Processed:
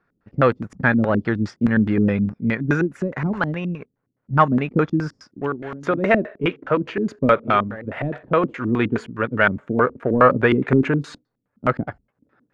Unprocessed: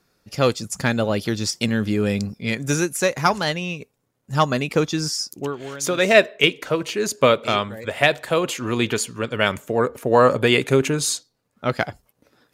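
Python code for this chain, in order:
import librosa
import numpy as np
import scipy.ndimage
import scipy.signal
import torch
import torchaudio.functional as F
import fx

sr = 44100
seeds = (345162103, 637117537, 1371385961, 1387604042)

y = fx.leveller(x, sr, passes=1)
y = fx.filter_lfo_lowpass(y, sr, shape='square', hz=4.8, low_hz=260.0, high_hz=1600.0, q=2.1)
y = y * librosa.db_to_amplitude(-2.5)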